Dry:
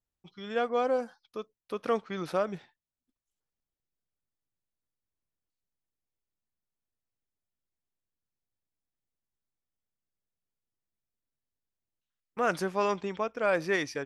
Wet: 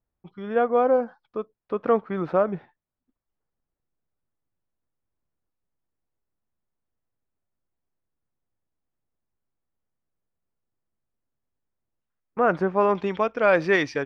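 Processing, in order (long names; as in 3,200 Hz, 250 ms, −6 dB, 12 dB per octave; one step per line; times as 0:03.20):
low-pass filter 1,400 Hz 12 dB per octave, from 0:12.95 3,700 Hz
level +8 dB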